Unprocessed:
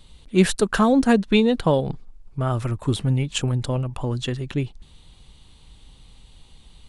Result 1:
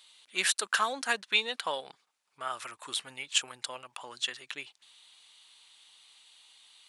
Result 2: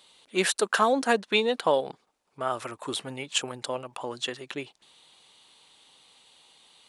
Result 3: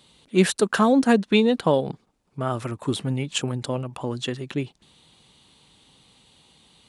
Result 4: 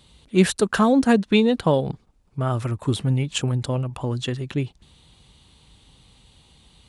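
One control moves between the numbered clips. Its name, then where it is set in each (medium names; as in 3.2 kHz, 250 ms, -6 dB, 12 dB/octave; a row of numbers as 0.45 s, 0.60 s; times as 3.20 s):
high-pass, cutoff frequency: 1.4 kHz, 530 Hz, 180 Hz, 68 Hz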